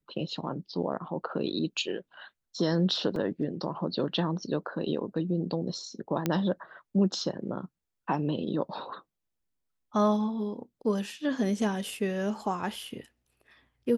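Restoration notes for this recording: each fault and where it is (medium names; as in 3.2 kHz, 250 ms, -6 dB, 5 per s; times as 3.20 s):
3.16 s: dropout 2.2 ms
6.26 s: pop -13 dBFS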